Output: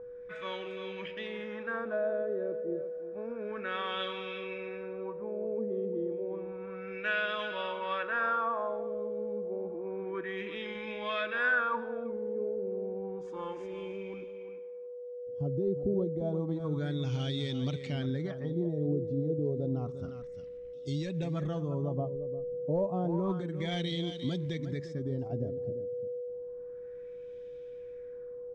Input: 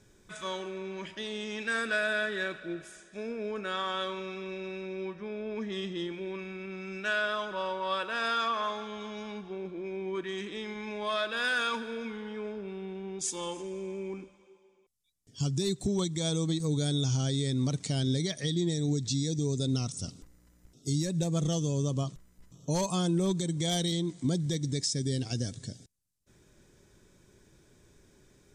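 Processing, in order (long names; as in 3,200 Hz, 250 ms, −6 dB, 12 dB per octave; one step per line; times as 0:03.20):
steady tone 490 Hz −39 dBFS
single-tap delay 351 ms −11 dB
auto-filter low-pass sine 0.3 Hz 490–3,000 Hz
level −4.5 dB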